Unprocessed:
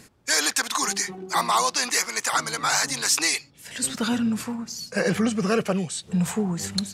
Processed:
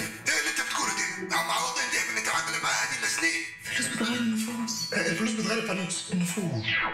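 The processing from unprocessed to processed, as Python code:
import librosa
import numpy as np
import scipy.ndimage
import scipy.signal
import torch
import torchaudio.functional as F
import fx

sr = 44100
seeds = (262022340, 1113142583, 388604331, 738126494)

p1 = fx.tape_stop_end(x, sr, length_s=0.57)
p2 = fx.peak_eq(p1, sr, hz=2200.0, db=8.0, octaves=0.59)
p3 = fx.transient(p2, sr, attack_db=-3, sustain_db=-8)
p4 = fx.rider(p3, sr, range_db=3, speed_s=0.5)
p5 = p3 + (p4 * 10.0 ** (-1.5 / 20.0))
p6 = fx.resonator_bank(p5, sr, root=45, chord='fifth', decay_s=0.21)
p7 = p6 + fx.echo_banded(p6, sr, ms=87, feedback_pct=51, hz=1300.0, wet_db=-12.5, dry=0)
p8 = fx.rev_gated(p7, sr, seeds[0], gate_ms=150, shape='flat', drr_db=8.0)
y = fx.band_squash(p8, sr, depth_pct=100)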